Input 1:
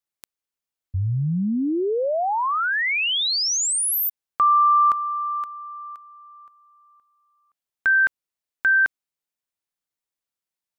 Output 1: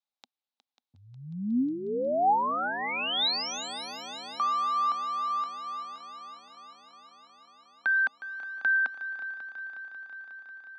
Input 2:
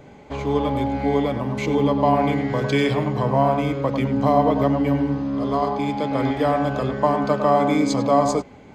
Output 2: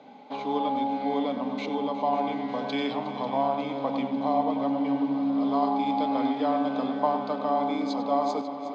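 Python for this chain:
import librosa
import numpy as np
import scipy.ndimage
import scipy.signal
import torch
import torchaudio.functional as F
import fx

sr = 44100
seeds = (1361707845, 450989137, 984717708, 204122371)

y = fx.rider(x, sr, range_db=4, speed_s=0.5)
y = fx.cabinet(y, sr, low_hz=220.0, low_slope=24, high_hz=5300.0, hz=(250.0, 360.0, 800.0, 1800.0, 3800.0), db=(7, -9, 9, -6, 8))
y = fx.echo_heads(y, sr, ms=181, heads='second and third', feedback_pct=72, wet_db=-14.0)
y = y * 10.0 ** (-9.0 / 20.0)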